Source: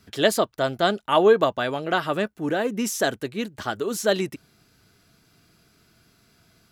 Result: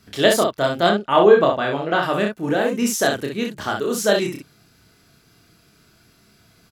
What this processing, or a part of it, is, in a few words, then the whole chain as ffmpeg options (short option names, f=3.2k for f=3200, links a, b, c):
slapback doubling: -filter_complex "[0:a]asplit=3[a][b][c];[b]adelay=29,volume=-3.5dB[d];[c]adelay=63,volume=-5dB[e];[a][d][e]amix=inputs=3:normalize=0,asettb=1/sr,asplit=3[f][g][h];[f]atrim=end=0.894[i];[g]atrim=start=0.89:end=2.03,asetpts=PTS-STARTPTS,afade=t=in:d=0.004:c=qsin,afade=t=out:st=1.136:d=0.004:c=qsin,aemphasis=mode=reproduction:type=50kf[j];[h]atrim=start=2.026[k];[i][j]acrossfade=d=0.004:c1=hsin:c2=qsin[l];[l][k]acrossfade=d=0.004:c1=qsin:c2=hsin,volume=2dB"